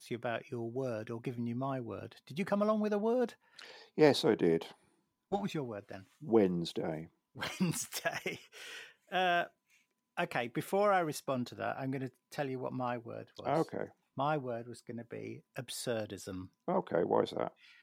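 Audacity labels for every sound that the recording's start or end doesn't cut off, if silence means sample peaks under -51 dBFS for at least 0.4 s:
5.320000	9.470000	sound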